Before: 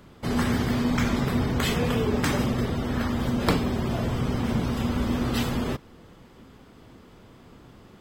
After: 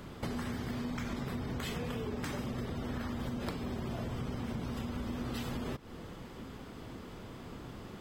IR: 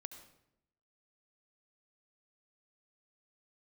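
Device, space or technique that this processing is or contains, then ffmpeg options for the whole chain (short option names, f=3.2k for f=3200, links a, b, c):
serial compression, peaks first: -af "acompressor=threshold=-34dB:ratio=6,acompressor=threshold=-41dB:ratio=2,volume=3.5dB"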